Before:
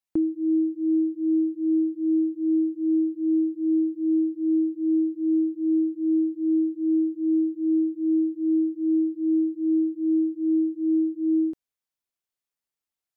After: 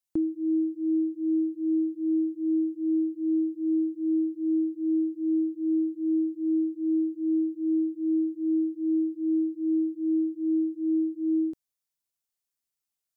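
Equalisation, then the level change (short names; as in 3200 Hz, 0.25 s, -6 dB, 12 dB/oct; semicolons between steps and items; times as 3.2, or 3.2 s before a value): tone controls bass +3 dB, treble +8 dB; -4.0 dB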